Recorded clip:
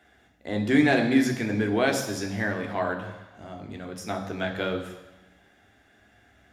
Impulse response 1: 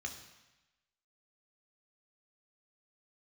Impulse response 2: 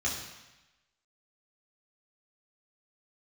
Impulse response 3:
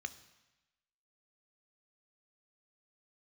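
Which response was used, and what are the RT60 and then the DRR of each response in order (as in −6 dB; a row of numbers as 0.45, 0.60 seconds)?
1; 1.0, 1.0, 1.0 seconds; 3.0, −5.0, 11.0 decibels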